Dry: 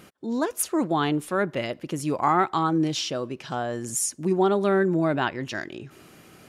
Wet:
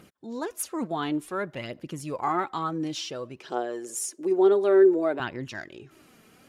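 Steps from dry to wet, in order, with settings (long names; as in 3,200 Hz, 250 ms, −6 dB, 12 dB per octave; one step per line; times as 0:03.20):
phase shifter 0.56 Hz, delay 4.7 ms, feedback 43%
0:03.40–0:05.20: high-pass with resonance 390 Hz, resonance Q 3.6
level −6.5 dB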